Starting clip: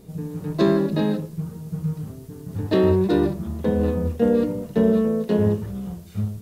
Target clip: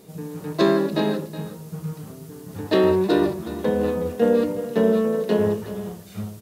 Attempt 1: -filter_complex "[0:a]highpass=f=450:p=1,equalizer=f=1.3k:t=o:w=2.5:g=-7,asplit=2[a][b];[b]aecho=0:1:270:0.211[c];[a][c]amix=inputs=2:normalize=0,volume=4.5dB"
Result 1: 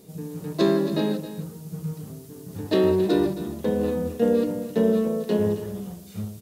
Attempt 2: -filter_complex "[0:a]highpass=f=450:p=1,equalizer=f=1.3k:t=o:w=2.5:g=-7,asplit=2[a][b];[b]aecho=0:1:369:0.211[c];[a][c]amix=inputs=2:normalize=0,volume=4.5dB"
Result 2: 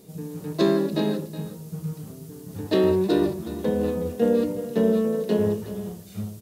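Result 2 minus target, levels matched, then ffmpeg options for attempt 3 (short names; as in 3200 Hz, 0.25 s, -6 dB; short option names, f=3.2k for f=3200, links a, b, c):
1000 Hz band -3.0 dB
-filter_complex "[0:a]highpass=f=450:p=1,asplit=2[a][b];[b]aecho=0:1:369:0.211[c];[a][c]amix=inputs=2:normalize=0,volume=4.5dB"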